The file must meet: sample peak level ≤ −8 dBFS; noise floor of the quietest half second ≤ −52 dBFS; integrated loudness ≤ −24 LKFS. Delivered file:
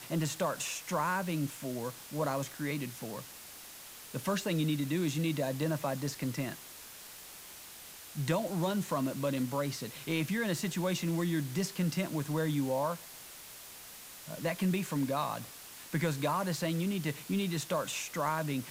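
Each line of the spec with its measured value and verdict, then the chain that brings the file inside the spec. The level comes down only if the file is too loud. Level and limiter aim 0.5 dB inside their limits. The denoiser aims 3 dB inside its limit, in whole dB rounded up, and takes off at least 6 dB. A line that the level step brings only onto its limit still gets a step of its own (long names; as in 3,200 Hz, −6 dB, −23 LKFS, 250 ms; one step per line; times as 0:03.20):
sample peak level −17.5 dBFS: in spec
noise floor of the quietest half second −50 dBFS: out of spec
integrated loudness −34.0 LKFS: in spec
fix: broadband denoise 6 dB, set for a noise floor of −50 dBFS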